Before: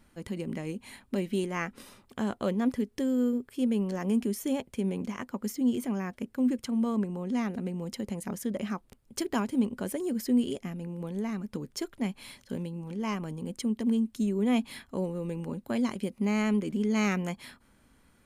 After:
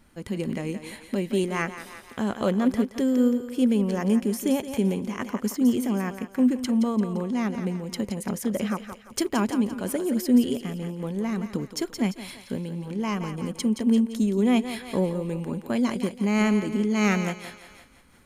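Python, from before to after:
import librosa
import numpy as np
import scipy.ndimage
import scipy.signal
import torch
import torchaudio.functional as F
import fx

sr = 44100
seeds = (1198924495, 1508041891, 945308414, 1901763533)

y = fx.echo_thinned(x, sr, ms=172, feedback_pct=47, hz=360.0, wet_db=-8.5)
y = fx.am_noise(y, sr, seeds[0], hz=5.7, depth_pct=55)
y = y * 10.0 ** (8.0 / 20.0)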